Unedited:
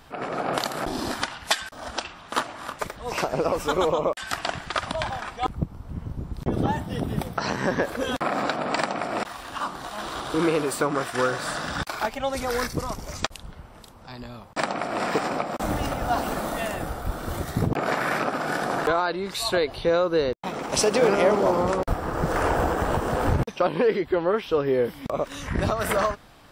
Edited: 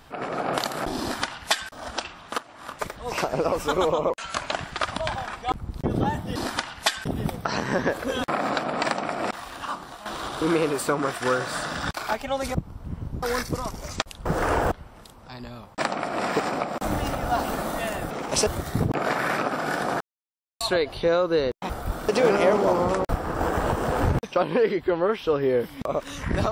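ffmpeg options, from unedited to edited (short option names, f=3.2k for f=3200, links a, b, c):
-filter_complex "[0:a]asplit=19[a][b][c][d][e][f][g][h][i][j][k][l][m][n][o][p][q][r][s];[a]atrim=end=2.38,asetpts=PTS-STARTPTS,afade=t=out:st=2.376:d=0.004:c=hsin:silence=0.0944061[t];[b]atrim=start=2.38:end=4.104,asetpts=PTS-STARTPTS,afade=t=in:d=0.46:silence=0.0944061[u];[c]atrim=start=4.1:end=4.47,asetpts=PTS-STARTPTS,asetrate=38367,aresample=44100,atrim=end_sample=18755,asetpts=PTS-STARTPTS[v];[d]atrim=start=4.466:end=5.592[w];[e]atrim=start=6.268:end=6.982[x];[f]atrim=start=0.998:end=1.702[y];[g]atrim=start=6.978:end=9.98,asetpts=PTS-STARTPTS,afade=t=out:st=2.492:d=0.51:silence=0.398107[z];[h]atrim=start=9.98:end=12.472,asetpts=PTS-STARTPTS,afade=t=in:d=0.004:c=hsin:silence=0.398107[aa];[i]atrim=start=5.588:end=6.272[ab];[j]atrim=start=12.468:end=13.502[ac];[k]atrim=start=22.188:end=22.652[ad];[l]atrim=start=13.498:end=16.892[ae];[m]atrim=start=20.508:end=20.872[af];[n]atrim=start=17.278:end=18.82,asetpts=PTS-STARTPTS,afade=t=out:st=1.538:d=0.004:c=hsin[ag];[o]atrim=start=18.82:end=19.42,asetpts=PTS-STARTPTS,volume=0[ah];[p]atrim=start=19.42:end=20.512,asetpts=PTS-STARTPTS,afade=t=in:d=0.004:c=hsin[ai];[q]atrim=start=16.888:end=17.282[aj];[r]atrim=start=20.868:end=22.192[ak];[s]atrim=start=22.648[al];[t][u]concat=n=2:v=0:a=1[am];[am][v]acrossfade=d=0.004:c1=hsin:c2=hsin[an];[an][w]acrossfade=d=0.004:c1=hsin:c2=hsin[ao];[ao][x]acrossfade=d=0.004:c1=hsin:c2=hsin[ap];[ap][y]acrossfade=d=0.004:c1=hsin:c2=hsin[aq];[z][aa]concat=n=2:v=0:a=1[ar];[aq][ar]acrossfade=d=0.004:c1=hsin:c2=hsin[as];[as][ab]acrossfade=d=0.004:c1=hsin:c2=hsin[at];[at][ac]acrossfade=d=0.004:c1=hsin:c2=hsin[au];[au][ad]acrossfade=d=0.004:c1=hsin:c2=hsin[av];[av][ae]acrossfade=d=0.004:c1=hsin:c2=hsin[aw];[aw][af]acrossfade=d=0.004:c1=hsin:c2=hsin[ax];[ag][ah][ai]concat=n=3:v=0:a=1[ay];[ax][ay]acrossfade=d=0.004:c1=hsin:c2=hsin[az];[az][aj]acrossfade=d=0.004:c1=hsin:c2=hsin[ba];[ba][ak]acrossfade=d=0.004:c1=hsin:c2=hsin[bb];[bb][al]acrossfade=d=0.004:c1=hsin:c2=hsin"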